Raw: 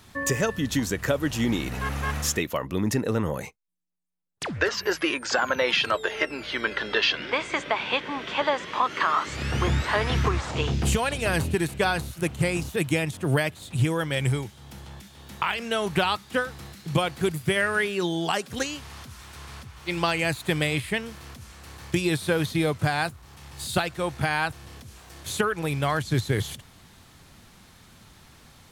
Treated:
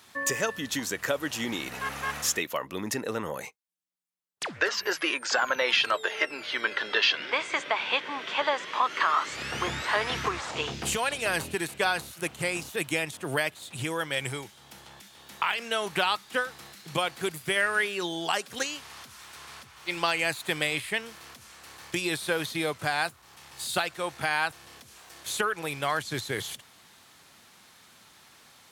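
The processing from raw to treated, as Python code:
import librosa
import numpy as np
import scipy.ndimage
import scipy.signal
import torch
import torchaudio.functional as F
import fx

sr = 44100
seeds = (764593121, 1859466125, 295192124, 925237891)

y = fx.highpass(x, sr, hz=650.0, slope=6)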